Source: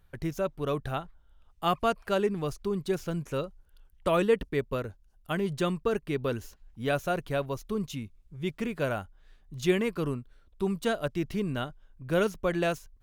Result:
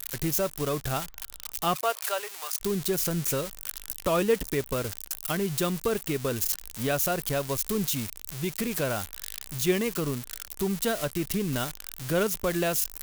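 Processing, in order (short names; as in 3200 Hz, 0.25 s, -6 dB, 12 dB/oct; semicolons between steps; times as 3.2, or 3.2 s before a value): switching spikes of -23.5 dBFS; recorder AGC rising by 26 dB/s; 1.75–2.6 HPF 390 Hz -> 940 Hz 24 dB/oct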